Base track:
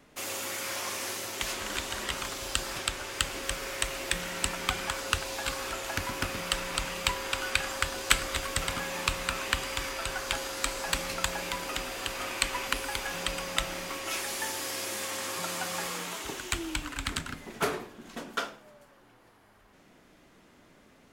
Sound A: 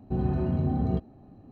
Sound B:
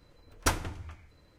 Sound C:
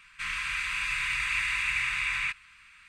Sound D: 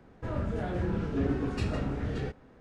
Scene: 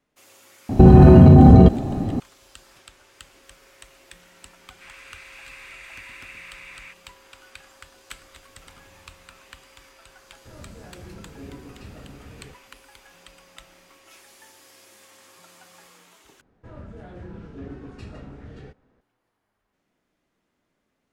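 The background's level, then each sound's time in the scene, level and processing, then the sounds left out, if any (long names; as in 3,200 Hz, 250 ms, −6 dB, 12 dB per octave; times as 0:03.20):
base track −17 dB
0:00.69: mix in A −0.5 dB + boost into a limiter +26.5 dB
0:04.61: mix in C −13.5 dB
0:08.21: mix in B −9 dB + downward compressor, threshold −44 dBFS
0:10.23: mix in D −11.5 dB
0:16.41: overwrite with D −9 dB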